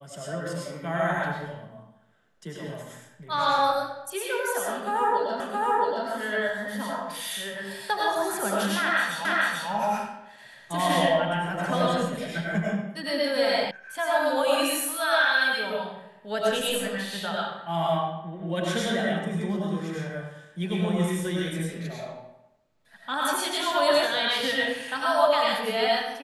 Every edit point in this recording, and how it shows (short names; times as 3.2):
5.4 repeat of the last 0.67 s
9.25 repeat of the last 0.44 s
13.71 sound cut off